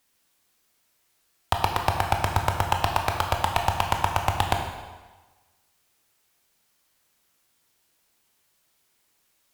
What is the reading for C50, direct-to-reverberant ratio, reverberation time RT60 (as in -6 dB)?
5.0 dB, 2.5 dB, 1.3 s